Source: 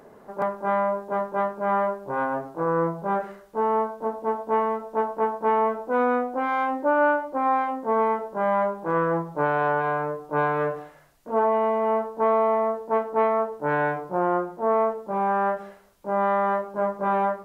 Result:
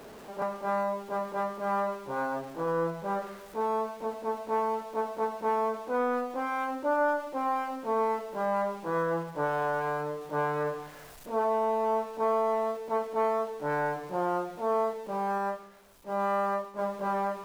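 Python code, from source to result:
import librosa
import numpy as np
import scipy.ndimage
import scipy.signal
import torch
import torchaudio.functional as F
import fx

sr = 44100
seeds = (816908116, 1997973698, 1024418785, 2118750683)

y = x + 0.5 * 10.0 ** (-37.5 / 20.0) * np.sign(x)
y = fx.rev_schroeder(y, sr, rt60_s=1.2, comb_ms=26, drr_db=13.0)
y = fx.upward_expand(y, sr, threshold_db=-39.0, expansion=1.5, at=(15.38, 16.79))
y = F.gain(torch.from_numpy(y), -7.0).numpy()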